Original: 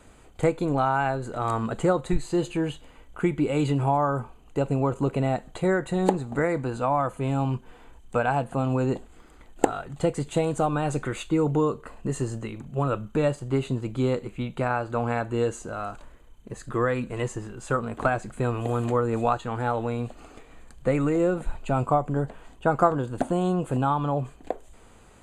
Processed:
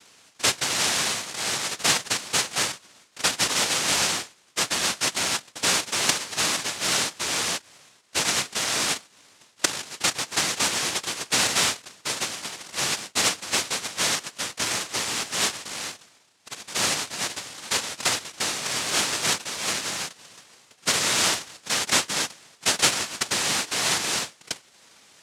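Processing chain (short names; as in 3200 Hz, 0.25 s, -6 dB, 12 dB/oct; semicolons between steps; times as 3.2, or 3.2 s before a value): high shelf 2600 Hz +9 dB; noise vocoder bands 1; gain -1 dB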